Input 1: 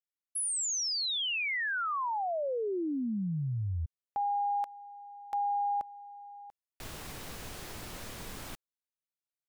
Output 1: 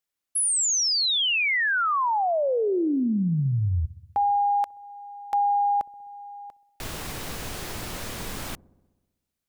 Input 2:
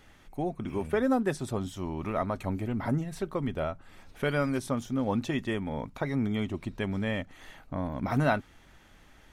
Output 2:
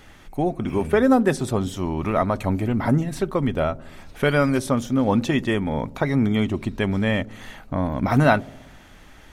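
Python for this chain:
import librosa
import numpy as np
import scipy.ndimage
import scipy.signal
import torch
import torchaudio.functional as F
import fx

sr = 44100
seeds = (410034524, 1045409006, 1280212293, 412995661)

y = fx.echo_wet_lowpass(x, sr, ms=64, feedback_pct=70, hz=490.0, wet_db=-19.0)
y = y * librosa.db_to_amplitude(9.0)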